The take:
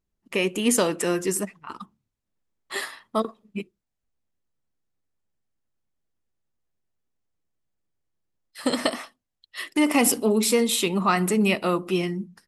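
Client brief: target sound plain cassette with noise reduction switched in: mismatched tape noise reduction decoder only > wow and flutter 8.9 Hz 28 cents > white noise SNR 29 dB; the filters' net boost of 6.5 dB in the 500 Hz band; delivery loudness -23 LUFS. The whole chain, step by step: bell 500 Hz +8 dB; mismatched tape noise reduction decoder only; wow and flutter 8.9 Hz 28 cents; white noise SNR 29 dB; gain -2.5 dB

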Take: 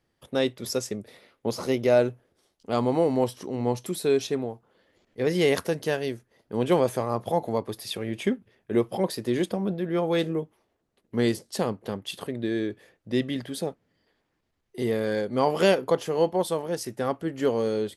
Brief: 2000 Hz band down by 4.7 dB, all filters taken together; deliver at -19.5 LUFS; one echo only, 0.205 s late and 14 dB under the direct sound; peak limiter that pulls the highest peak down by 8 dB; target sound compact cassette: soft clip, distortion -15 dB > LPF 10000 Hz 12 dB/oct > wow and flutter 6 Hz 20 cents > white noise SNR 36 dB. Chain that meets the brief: bell 2000 Hz -6 dB; limiter -17.5 dBFS; echo 0.205 s -14 dB; soft clip -22.5 dBFS; LPF 10000 Hz 12 dB/oct; wow and flutter 6 Hz 20 cents; white noise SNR 36 dB; gain +12.5 dB

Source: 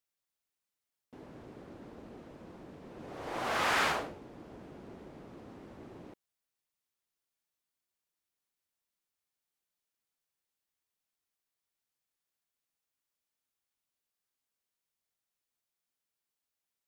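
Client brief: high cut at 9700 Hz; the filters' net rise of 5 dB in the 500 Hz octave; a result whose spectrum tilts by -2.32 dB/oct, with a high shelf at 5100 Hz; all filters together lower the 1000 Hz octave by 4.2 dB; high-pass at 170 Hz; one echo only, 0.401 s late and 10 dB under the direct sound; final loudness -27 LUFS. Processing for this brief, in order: HPF 170 Hz; LPF 9700 Hz; bell 500 Hz +9 dB; bell 1000 Hz -9 dB; high shelf 5100 Hz +5.5 dB; echo 0.401 s -10 dB; gain +10 dB

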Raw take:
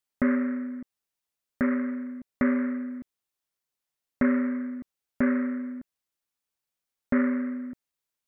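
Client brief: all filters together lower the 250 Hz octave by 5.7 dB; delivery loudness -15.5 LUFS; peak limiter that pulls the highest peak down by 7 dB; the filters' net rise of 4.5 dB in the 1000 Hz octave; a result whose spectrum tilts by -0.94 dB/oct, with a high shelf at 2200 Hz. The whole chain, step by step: bell 250 Hz -6 dB; bell 1000 Hz +8.5 dB; high shelf 2200 Hz -7 dB; gain +19 dB; limiter -2 dBFS

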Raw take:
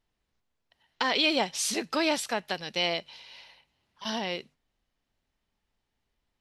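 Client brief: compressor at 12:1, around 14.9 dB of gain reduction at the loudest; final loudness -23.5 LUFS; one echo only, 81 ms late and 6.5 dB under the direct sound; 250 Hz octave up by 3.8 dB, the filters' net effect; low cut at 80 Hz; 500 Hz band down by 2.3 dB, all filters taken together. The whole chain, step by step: HPF 80 Hz; bell 250 Hz +7 dB; bell 500 Hz -5 dB; compressor 12:1, threshold -36 dBFS; echo 81 ms -6.5 dB; gain +16.5 dB

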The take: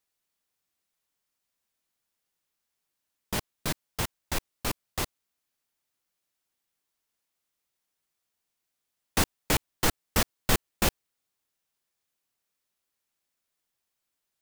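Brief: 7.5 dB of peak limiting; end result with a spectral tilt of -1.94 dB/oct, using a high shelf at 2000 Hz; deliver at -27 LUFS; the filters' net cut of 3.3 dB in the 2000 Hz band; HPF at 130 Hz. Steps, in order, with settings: HPF 130 Hz; high shelf 2000 Hz +5 dB; bell 2000 Hz -7.5 dB; gain +5 dB; limiter -12 dBFS

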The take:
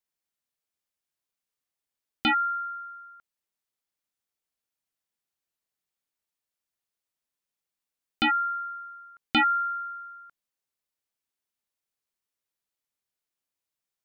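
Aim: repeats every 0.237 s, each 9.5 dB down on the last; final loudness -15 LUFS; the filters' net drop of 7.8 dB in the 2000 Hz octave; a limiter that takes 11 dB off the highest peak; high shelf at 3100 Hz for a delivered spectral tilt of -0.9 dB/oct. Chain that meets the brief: bell 2000 Hz -8.5 dB; high shelf 3100 Hz -6.5 dB; limiter -26.5 dBFS; feedback echo 0.237 s, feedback 33%, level -9.5 dB; gain +20 dB

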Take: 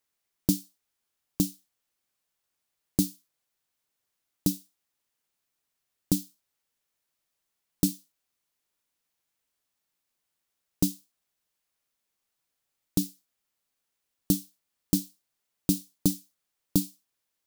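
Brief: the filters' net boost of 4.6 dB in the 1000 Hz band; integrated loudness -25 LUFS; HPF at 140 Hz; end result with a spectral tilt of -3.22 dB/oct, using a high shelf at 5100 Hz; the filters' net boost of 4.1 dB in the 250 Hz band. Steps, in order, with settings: HPF 140 Hz; bell 250 Hz +6 dB; bell 1000 Hz +5.5 dB; high shelf 5100 Hz +5 dB; gain +1.5 dB

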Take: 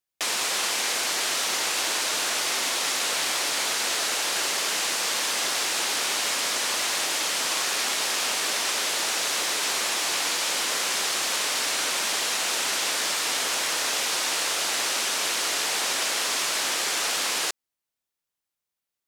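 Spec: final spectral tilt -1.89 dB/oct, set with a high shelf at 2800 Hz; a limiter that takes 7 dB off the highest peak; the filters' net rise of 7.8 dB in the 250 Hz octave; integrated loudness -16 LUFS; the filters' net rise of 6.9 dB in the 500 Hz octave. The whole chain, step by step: bell 250 Hz +7.5 dB; bell 500 Hz +7 dB; high shelf 2800 Hz -6 dB; gain +13 dB; limiter -8 dBFS

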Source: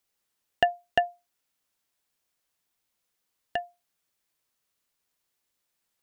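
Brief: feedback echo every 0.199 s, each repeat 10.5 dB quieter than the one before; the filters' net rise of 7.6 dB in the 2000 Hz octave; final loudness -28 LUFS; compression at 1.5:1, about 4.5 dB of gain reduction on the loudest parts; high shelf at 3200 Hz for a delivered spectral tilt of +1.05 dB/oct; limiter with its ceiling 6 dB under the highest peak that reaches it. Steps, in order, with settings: bell 2000 Hz +8 dB; high shelf 3200 Hz +3.5 dB; compressor 1.5:1, threshold -26 dBFS; limiter -10.5 dBFS; feedback echo 0.199 s, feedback 30%, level -10.5 dB; gain +6.5 dB

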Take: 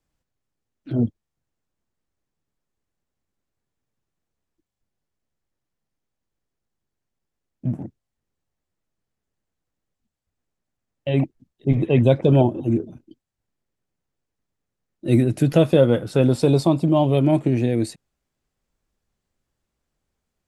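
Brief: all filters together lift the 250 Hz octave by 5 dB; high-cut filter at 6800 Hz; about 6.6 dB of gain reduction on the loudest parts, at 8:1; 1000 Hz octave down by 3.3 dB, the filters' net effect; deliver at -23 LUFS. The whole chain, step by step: LPF 6800 Hz; bell 250 Hz +6.5 dB; bell 1000 Hz -5.5 dB; compressor 8:1, threshold -15 dBFS; gain -1 dB

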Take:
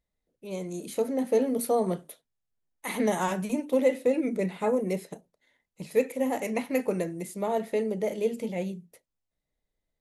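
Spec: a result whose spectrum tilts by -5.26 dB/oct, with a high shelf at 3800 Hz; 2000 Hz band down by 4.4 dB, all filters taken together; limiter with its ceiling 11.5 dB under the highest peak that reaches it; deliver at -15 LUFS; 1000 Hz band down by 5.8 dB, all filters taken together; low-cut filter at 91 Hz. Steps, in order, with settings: HPF 91 Hz; bell 1000 Hz -8 dB; bell 2000 Hz -4.5 dB; high shelf 3800 Hz +5 dB; gain +19.5 dB; limiter -5.5 dBFS

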